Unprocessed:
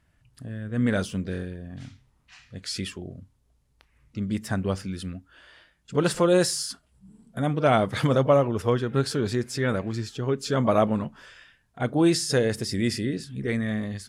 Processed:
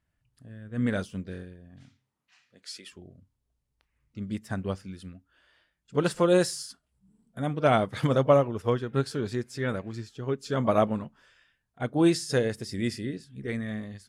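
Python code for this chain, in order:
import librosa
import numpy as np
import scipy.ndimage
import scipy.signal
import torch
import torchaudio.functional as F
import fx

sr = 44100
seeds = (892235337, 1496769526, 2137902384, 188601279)

y = fx.highpass(x, sr, hz=fx.line((1.83, 110.0), (2.91, 440.0)), slope=12, at=(1.83, 2.91), fade=0.02)
y = fx.upward_expand(y, sr, threshold_db=-39.0, expansion=1.5)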